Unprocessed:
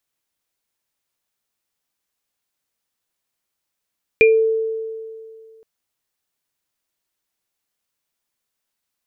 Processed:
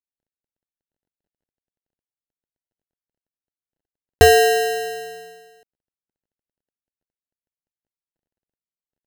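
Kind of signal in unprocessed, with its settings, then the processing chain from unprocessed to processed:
sine partials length 1.42 s, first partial 445 Hz, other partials 2400 Hz, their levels 0 dB, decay 2.25 s, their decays 0.23 s, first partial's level -8 dB
G.711 law mismatch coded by A; low shelf 400 Hz +6 dB; sample-and-hold 38×

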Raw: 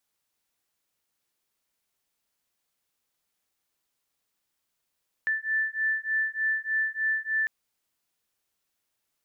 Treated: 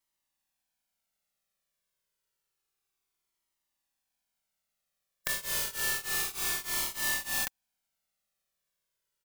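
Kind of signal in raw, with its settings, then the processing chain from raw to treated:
beating tones 1760 Hz, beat 3.3 Hz, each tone -28 dBFS 2.20 s
spectral contrast lowered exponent 0.22; comb 5.2 ms, depth 31%; cascading flanger falling 0.29 Hz

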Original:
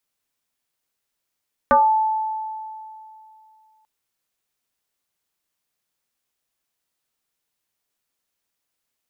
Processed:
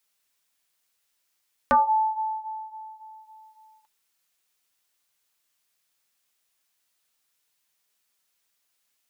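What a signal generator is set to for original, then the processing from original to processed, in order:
FM tone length 2.14 s, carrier 873 Hz, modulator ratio 0.36, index 2, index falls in 0.30 s exponential, decay 2.67 s, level -10 dB
flange 0.25 Hz, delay 4.4 ms, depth 8.2 ms, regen -43%; mismatched tape noise reduction encoder only

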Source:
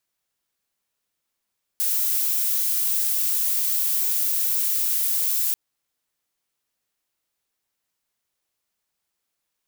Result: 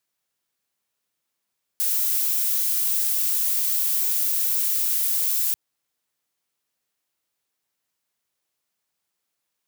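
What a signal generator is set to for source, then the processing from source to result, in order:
noise violet, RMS -22.5 dBFS 3.74 s
HPF 77 Hz

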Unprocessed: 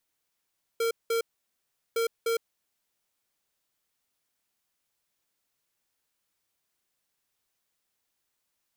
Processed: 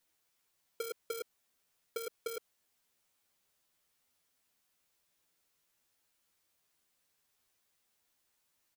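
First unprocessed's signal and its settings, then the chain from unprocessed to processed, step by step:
beep pattern square 459 Hz, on 0.11 s, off 0.19 s, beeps 2, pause 0.75 s, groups 2, -26.5 dBFS
limiter -32.5 dBFS; doubler 12 ms -3 dB

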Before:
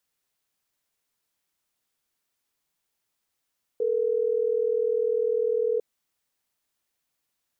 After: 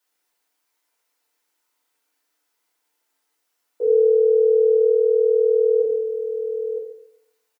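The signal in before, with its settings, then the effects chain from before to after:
call progress tone ringback tone, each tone -24.5 dBFS
HPF 410 Hz 12 dB/oct; on a send: echo 0.965 s -10 dB; on the sum: FDN reverb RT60 0.76 s, low-frequency decay 1.05×, high-frequency decay 0.4×, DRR -7 dB

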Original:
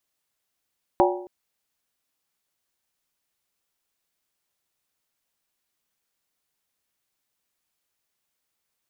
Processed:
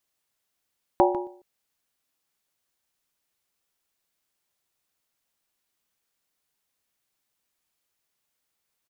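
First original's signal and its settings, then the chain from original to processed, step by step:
skin hit length 0.27 s, lowest mode 359 Hz, modes 5, decay 0.66 s, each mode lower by 1 dB, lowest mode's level -16.5 dB
echo 0.148 s -14 dB

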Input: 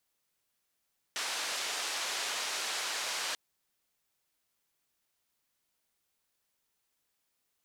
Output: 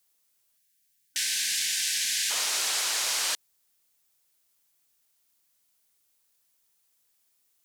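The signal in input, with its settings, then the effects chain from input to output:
noise band 560–6000 Hz, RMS -35.5 dBFS 2.19 s
spectral gain 0.58–2.31, 260–1500 Hz -24 dB; high shelf 4300 Hz +11 dB; in parallel at -11 dB: bit-crush 8-bit

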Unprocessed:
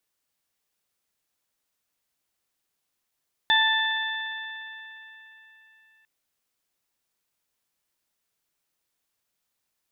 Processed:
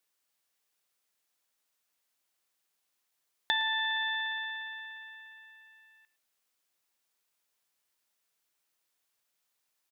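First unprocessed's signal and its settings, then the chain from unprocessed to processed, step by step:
additive tone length 2.55 s, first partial 883 Hz, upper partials 3.5/-15.5/3 dB, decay 2.73 s, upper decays 3.77/4.98/2.73 s, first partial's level -23 dB
low shelf 290 Hz -10 dB; compressor 6:1, threshold -27 dBFS; outdoor echo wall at 19 m, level -18 dB

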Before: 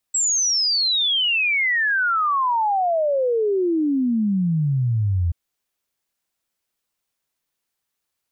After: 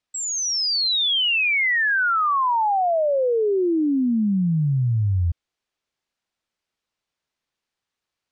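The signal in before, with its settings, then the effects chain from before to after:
log sweep 7800 Hz -> 82 Hz 5.18 s -17 dBFS
LPF 5300 Hz 12 dB/oct

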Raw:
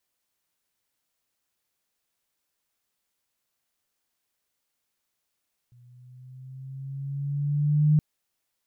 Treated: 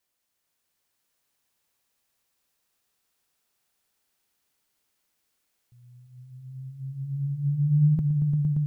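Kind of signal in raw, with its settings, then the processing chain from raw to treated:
gliding synth tone sine, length 2.27 s, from 121 Hz, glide +4 st, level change +36.5 dB, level -15 dB
swelling echo 0.115 s, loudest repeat 5, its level -7.5 dB

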